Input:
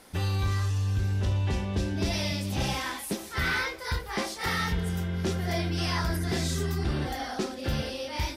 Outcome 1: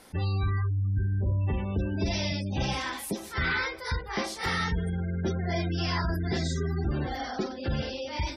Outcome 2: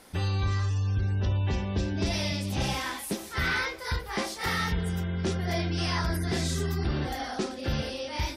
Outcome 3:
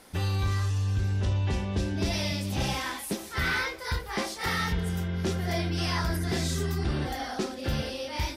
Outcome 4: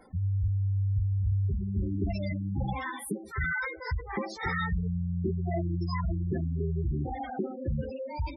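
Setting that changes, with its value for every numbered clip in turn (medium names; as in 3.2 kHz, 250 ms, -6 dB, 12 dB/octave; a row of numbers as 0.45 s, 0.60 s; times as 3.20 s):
spectral gate, under each frame's peak: -25 dB, -40 dB, -55 dB, -10 dB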